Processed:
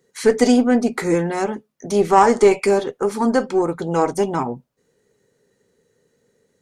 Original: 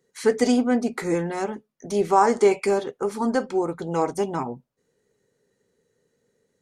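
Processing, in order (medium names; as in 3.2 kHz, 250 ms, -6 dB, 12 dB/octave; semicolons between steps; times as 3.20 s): single-diode clipper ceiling -9.5 dBFS; trim +6 dB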